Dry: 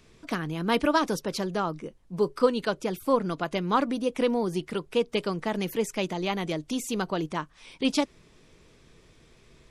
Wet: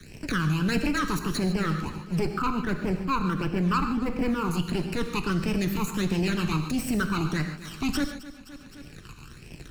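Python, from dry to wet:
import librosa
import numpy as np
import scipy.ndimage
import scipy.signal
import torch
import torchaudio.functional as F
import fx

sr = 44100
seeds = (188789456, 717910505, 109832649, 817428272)

y = fx.lower_of_two(x, sr, delay_ms=0.72)
y = fx.lowpass(y, sr, hz=1800.0, slope=24, at=(2.27, 4.51))
y = fx.leveller(y, sr, passes=3)
y = fx.transient(y, sr, attack_db=-8, sustain_db=-4)
y = fx.phaser_stages(y, sr, stages=12, low_hz=560.0, high_hz=1300.0, hz=1.5, feedback_pct=30)
y = fx.echo_feedback(y, sr, ms=259, feedback_pct=41, wet_db=-20)
y = fx.rev_gated(y, sr, seeds[0], gate_ms=170, shape='flat', drr_db=6.5)
y = fx.band_squash(y, sr, depth_pct=70)
y = y * librosa.db_to_amplitude(-3.0)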